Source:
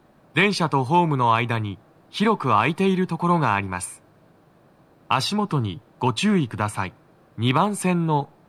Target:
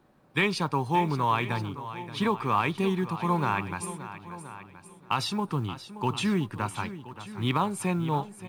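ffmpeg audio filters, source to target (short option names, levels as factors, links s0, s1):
-filter_complex "[0:a]bandreject=f=650:w=12,asplit=2[s0][s1];[s1]aecho=0:1:1025|2050:0.158|0.0349[s2];[s0][s2]amix=inputs=2:normalize=0,acrusher=bits=9:mode=log:mix=0:aa=0.000001,asplit=2[s3][s4];[s4]aecho=0:1:576:0.211[s5];[s3][s5]amix=inputs=2:normalize=0,volume=0.473"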